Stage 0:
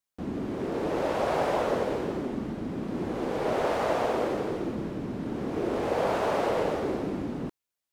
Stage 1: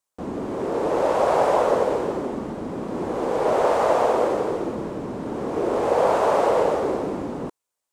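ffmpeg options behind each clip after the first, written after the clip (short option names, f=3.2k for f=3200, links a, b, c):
-af "equalizer=f=500:t=o:w=1:g=7,equalizer=f=1k:t=o:w=1:g=8,equalizer=f=8k:t=o:w=1:g=8"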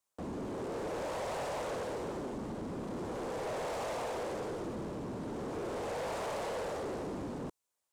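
-filter_complex "[0:a]acrossover=split=160|3000[a][b][c];[b]acompressor=threshold=-44dB:ratio=1.5[d];[a][d][c]amix=inputs=3:normalize=0,asoftclip=type=tanh:threshold=-31.5dB,volume=-2.5dB"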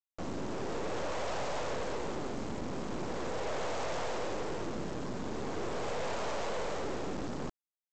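-af "aeval=exprs='val(0)+0.000708*(sin(2*PI*50*n/s)+sin(2*PI*2*50*n/s)/2+sin(2*PI*3*50*n/s)/3+sin(2*PI*4*50*n/s)/4+sin(2*PI*5*50*n/s)/5)':c=same,aresample=16000,acrusher=bits=6:dc=4:mix=0:aa=0.000001,aresample=44100,volume=6dB"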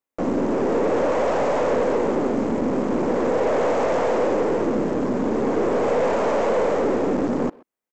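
-filter_complex "[0:a]equalizer=f=250:t=o:w=1:g=12,equalizer=f=500:t=o:w=1:g=10,equalizer=f=1k:t=o:w=1:g=5,equalizer=f=2k:t=o:w=1:g=5,equalizer=f=4k:t=o:w=1:g=-5,asplit=2[a][b];[b]adelay=130,highpass=300,lowpass=3.4k,asoftclip=type=hard:threshold=-25dB,volume=-22dB[c];[a][c]amix=inputs=2:normalize=0,volume=5dB"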